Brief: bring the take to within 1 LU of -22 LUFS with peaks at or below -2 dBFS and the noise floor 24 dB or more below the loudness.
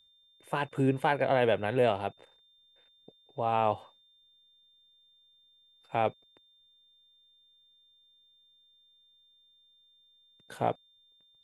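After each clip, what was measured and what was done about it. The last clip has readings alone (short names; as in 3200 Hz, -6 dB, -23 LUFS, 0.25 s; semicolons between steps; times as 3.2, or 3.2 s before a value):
steady tone 3600 Hz; tone level -62 dBFS; loudness -30.0 LUFS; peak -12.5 dBFS; loudness target -22.0 LUFS
-> notch 3600 Hz, Q 30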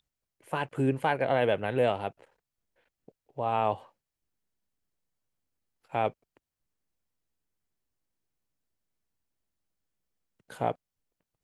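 steady tone none; loudness -30.0 LUFS; peak -12.5 dBFS; loudness target -22.0 LUFS
-> gain +8 dB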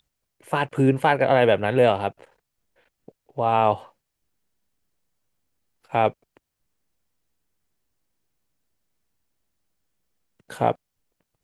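loudness -22.0 LUFS; peak -4.5 dBFS; noise floor -81 dBFS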